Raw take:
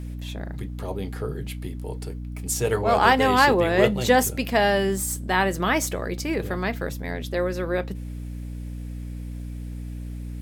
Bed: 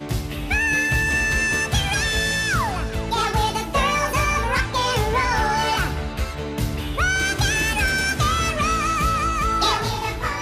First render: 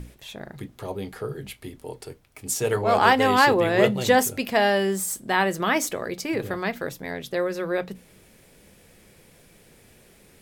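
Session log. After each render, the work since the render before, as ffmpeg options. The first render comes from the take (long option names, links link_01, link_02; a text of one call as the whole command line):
ffmpeg -i in.wav -af "bandreject=frequency=60:width_type=h:width=6,bandreject=frequency=120:width_type=h:width=6,bandreject=frequency=180:width_type=h:width=6,bandreject=frequency=240:width_type=h:width=6,bandreject=frequency=300:width_type=h:width=6" out.wav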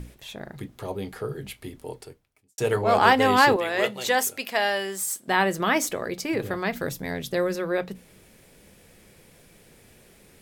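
ffmpeg -i in.wav -filter_complex "[0:a]asettb=1/sr,asplit=3[link_01][link_02][link_03];[link_01]atrim=end=3.564[link_04];[link_02]atrim=start=3.56:end=5.28,asetpts=PTS-STARTPTS,afade=type=in:duration=0.004:curve=qsin,afade=type=out:start_time=1.716:duration=0.004:curve=qsin,highpass=frequency=920:poles=1[link_05];[link_03]atrim=start=5.276[link_06];[link_04][link_05]acrossfade=duration=0.004:curve1=hsin:curve2=qsin[link_07];[link_07][link_06]acrossfade=duration=0.004:curve1=qsin:curve2=hsin,asettb=1/sr,asplit=3[link_08][link_09][link_10];[link_08]atrim=end=6.724[link_11];[link_09]atrim=start=6.72:end=7.56,asetpts=PTS-STARTPTS,afade=type=in:duration=0.004:curve=qsin,afade=type=out:start_time=0.836:duration=0.004:curve=qsin,bass=frequency=250:gain=6,treble=frequency=4000:gain=5[link_12];[link_10]atrim=start=7.556[link_13];[link_11][link_12]acrossfade=duration=0.004:curve1=hsin:curve2=qsin[link_14];[link_14][link_13]acrossfade=duration=0.004:curve1=qsin:curve2=hsin,asplit=2[link_15][link_16];[link_15]atrim=end=2.58,asetpts=PTS-STARTPTS,afade=type=out:start_time=1.92:duration=0.66:curve=qua[link_17];[link_16]atrim=start=2.58,asetpts=PTS-STARTPTS,afade=type=in:duration=0.004:curve=hsin[link_18];[link_17][link_18]concat=n=2:v=0:a=1" out.wav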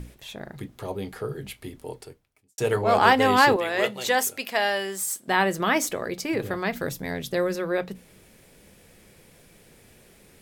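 ffmpeg -i in.wav -af anull out.wav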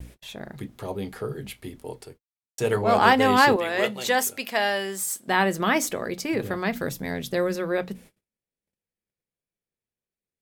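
ffmpeg -i in.wav -af "adynamicequalizer=threshold=0.00562:dfrequency=220:dqfactor=4:tfrequency=220:tqfactor=4:attack=5:release=100:ratio=0.375:range=2.5:mode=boostabove:tftype=bell,agate=range=-41dB:threshold=-47dB:ratio=16:detection=peak" out.wav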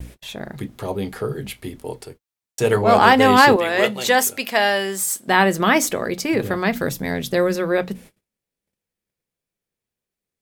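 ffmpeg -i in.wav -af "volume=6dB,alimiter=limit=-1dB:level=0:latency=1" out.wav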